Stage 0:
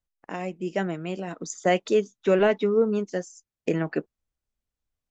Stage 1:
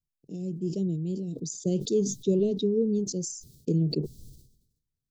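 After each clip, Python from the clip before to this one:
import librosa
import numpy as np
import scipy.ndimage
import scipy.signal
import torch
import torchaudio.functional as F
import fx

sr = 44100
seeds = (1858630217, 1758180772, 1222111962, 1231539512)

y = scipy.signal.sosfilt(scipy.signal.ellip(3, 1.0, 60, [420.0, 4100.0], 'bandstop', fs=sr, output='sos'), x)
y = fx.peak_eq(y, sr, hz=140.0, db=14.0, octaves=0.88)
y = fx.sustainer(y, sr, db_per_s=69.0)
y = y * 10.0 ** (-4.0 / 20.0)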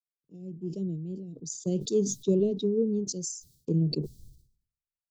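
y = fx.band_widen(x, sr, depth_pct=70)
y = y * 10.0 ** (-2.0 / 20.0)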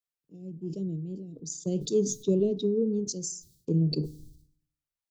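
y = fx.rev_fdn(x, sr, rt60_s=0.58, lf_ratio=1.3, hf_ratio=0.6, size_ms=20.0, drr_db=16.0)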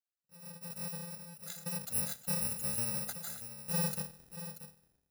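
y = fx.bit_reversed(x, sr, seeds[0], block=128)
y = fx.notch_comb(y, sr, f0_hz=1100.0)
y = y + 10.0 ** (-11.5 / 20.0) * np.pad(y, (int(634 * sr / 1000.0), 0))[:len(y)]
y = y * 10.0 ** (-6.5 / 20.0)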